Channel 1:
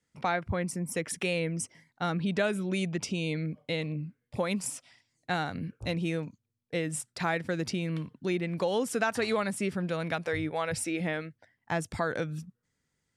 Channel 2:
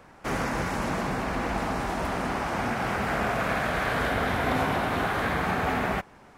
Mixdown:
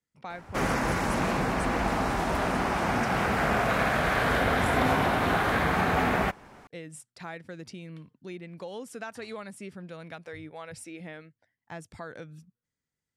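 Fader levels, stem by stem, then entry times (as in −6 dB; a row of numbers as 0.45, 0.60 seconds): −10.5, +1.5 decibels; 0.00, 0.30 seconds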